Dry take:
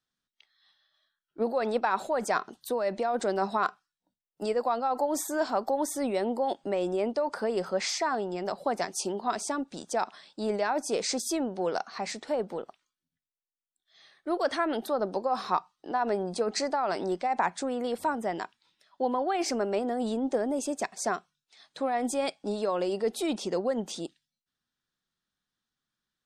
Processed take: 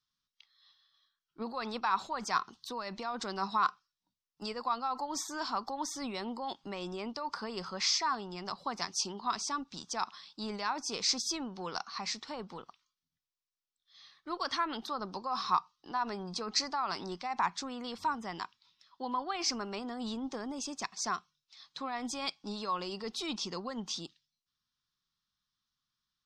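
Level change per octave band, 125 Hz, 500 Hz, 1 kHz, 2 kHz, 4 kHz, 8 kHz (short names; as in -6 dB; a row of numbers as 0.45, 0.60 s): -4.5, -14.5, -4.0, -4.5, +3.0, -1.5 dB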